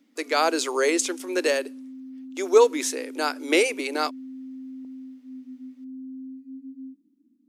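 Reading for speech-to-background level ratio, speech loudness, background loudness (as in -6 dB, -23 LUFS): 17.0 dB, -23.5 LUFS, -40.5 LUFS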